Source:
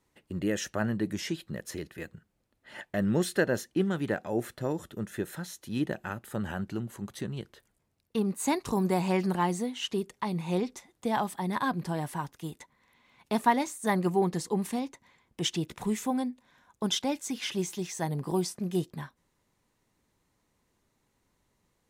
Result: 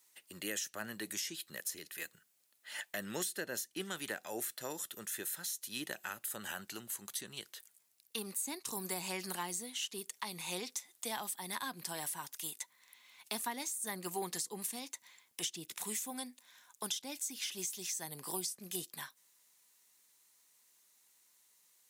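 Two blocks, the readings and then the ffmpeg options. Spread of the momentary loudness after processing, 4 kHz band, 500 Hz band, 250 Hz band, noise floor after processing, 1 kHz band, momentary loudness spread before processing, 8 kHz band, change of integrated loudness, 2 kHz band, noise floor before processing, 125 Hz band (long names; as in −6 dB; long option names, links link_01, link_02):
8 LU, −3.5 dB, −14.5 dB, −17.5 dB, −73 dBFS, −12.5 dB, 13 LU, +2.5 dB, −8.5 dB, −6.0 dB, −76 dBFS, −20.0 dB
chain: -filter_complex "[0:a]aderivative,acrossover=split=390[link_01][link_02];[link_02]acompressor=threshold=-49dB:ratio=10[link_03];[link_01][link_03]amix=inputs=2:normalize=0,volume=12.5dB"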